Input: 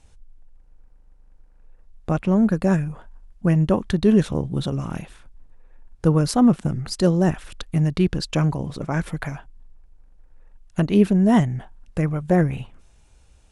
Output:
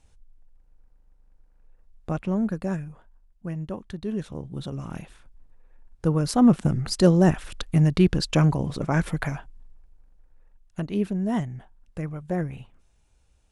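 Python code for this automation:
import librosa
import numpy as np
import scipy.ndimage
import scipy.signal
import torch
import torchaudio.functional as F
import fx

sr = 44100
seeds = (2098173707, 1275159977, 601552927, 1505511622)

y = fx.gain(x, sr, db=fx.line((2.21, -6.0), (3.46, -14.0), (4.09, -14.0), (5.02, -5.0), (6.19, -5.0), (6.59, 1.0), (9.33, 1.0), (10.81, -9.5)))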